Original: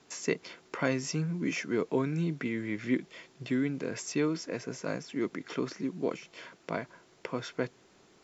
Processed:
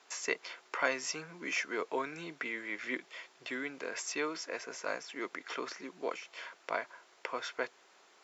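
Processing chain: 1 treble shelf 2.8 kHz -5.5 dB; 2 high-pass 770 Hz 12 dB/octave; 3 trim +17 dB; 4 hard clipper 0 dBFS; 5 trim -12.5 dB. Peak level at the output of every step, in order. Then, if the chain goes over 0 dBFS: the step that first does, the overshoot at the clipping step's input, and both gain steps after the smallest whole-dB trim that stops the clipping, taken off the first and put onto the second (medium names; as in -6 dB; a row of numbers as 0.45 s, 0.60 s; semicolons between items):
-14.0 dBFS, -19.5 dBFS, -2.5 dBFS, -2.5 dBFS, -15.0 dBFS; nothing clips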